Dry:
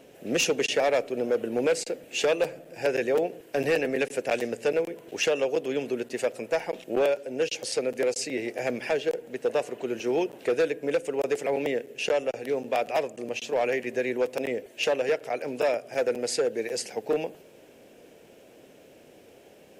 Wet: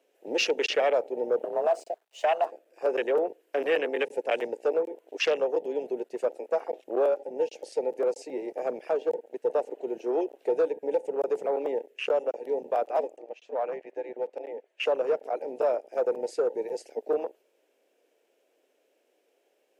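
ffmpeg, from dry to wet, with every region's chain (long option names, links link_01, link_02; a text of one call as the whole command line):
ffmpeg -i in.wav -filter_complex "[0:a]asettb=1/sr,asplit=3[link_01][link_02][link_03];[link_01]atrim=end=1.444[link_04];[link_02]atrim=start=1.44:end=2.52,asetpts=PTS-STARTPTS,afade=type=in:duration=0.004:curve=qsin,afade=type=out:start_time=1.076:duration=0.004:curve=qsin,aeval=exprs='sgn(val(0))*max(abs(val(0))-0.00501,0)':channel_layout=same,afreqshift=170[link_05];[link_03]atrim=start=2.516[link_06];[link_04][link_05]acrossfade=duration=0.004:curve1=hsin:curve2=qsin[link_07];[link_07][link_06]acrossfade=duration=0.004:curve1=qsin:curve2=hsin,asettb=1/sr,asplit=3[link_08][link_09][link_10];[link_08]atrim=end=13.184[link_11];[link_09]atrim=start=13.18:end=14.8,asetpts=PTS-STARTPTS,afade=type=in:duration=0.004:curve=qsin,afade=type=out:start_time=1.616:duration=0.004:curve=qsin,highpass=750,aemphasis=mode=reproduction:type=riaa[link_12];[link_10]atrim=start=14.796[link_13];[link_11][link_12]acrossfade=duration=0.004:curve1=hsin:curve2=qsin[link_14];[link_14][link_13]acrossfade=duration=0.004:curve1=qsin:curve2=hsin,highpass=frequency=340:width=0.5412,highpass=frequency=340:width=1.3066,afwtdn=0.0282" out.wav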